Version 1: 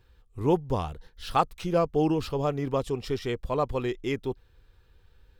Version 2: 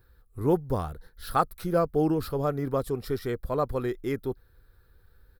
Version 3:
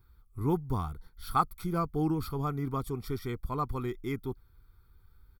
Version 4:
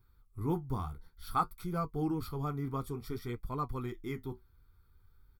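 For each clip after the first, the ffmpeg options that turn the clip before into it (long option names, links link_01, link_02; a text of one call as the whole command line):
ffmpeg -i in.wav -af "firequalizer=gain_entry='entry(610,0);entry(940,-4);entry(1400,5);entry(2800,-13);entry(4100,-1);entry(6400,-7);entry(11000,11)':delay=0.05:min_phase=1" out.wav
ffmpeg -i in.wav -af "aecho=1:1:0.9:0.8,volume=-5.5dB" out.wav
ffmpeg -i in.wav -af "flanger=delay=7.4:depth=7.4:regen=-52:speed=0.56:shape=sinusoidal" out.wav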